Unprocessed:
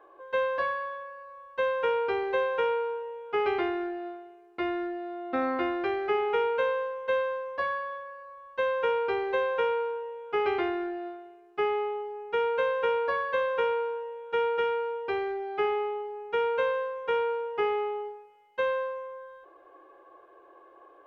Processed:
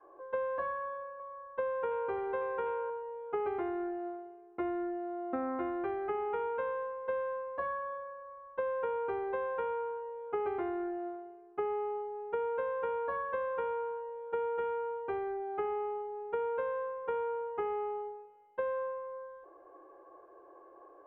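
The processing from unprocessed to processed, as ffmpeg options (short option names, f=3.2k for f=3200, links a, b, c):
-filter_complex "[0:a]asettb=1/sr,asplit=3[a][b][c];[a]atrim=end=0.874[d];[b]atrim=start=0.87:end=2.9,asetpts=PTS-STARTPTS,afade=t=in:d=0.004:c=qsin,afade=t=out:st=2.026:d=0.004:c=qsin,aecho=1:1:327:0.251,atrim=end_sample=89523[e];[c]atrim=start=2.896[f];[d][e]acrossfade=d=0.004:c1=hsin:c2=qsin[g];[g][f]acrossfade=d=0.004:c1=qsin:c2=hsin,lowpass=1.1k,adynamicequalizer=threshold=0.01:dfrequency=480:dqfactor=1.5:tfrequency=480:tqfactor=1.5:attack=5:release=100:ratio=0.375:range=3:mode=cutabove:tftype=bell,acompressor=threshold=-31dB:ratio=6"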